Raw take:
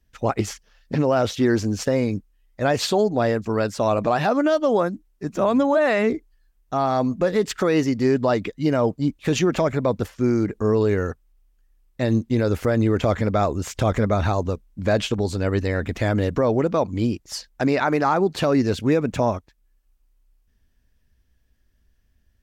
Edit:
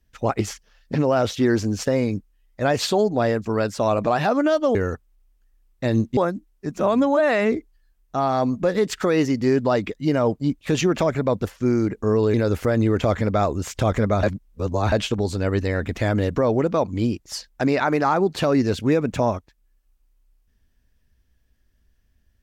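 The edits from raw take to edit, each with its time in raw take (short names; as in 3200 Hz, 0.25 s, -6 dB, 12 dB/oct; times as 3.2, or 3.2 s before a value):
10.92–12.34 move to 4.75
14.23–14.92 reverse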